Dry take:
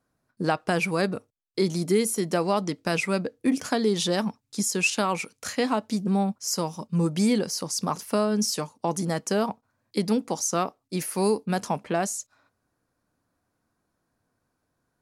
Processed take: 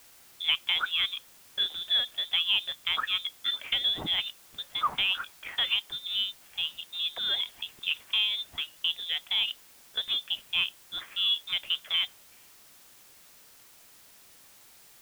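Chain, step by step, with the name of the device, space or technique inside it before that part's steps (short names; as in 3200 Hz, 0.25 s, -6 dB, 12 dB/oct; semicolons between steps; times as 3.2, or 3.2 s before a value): scrambled radio voice (BPF 380–3000 Hz; inverted band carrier 3800 Hz; white noise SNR 23 dB); gain -1 dB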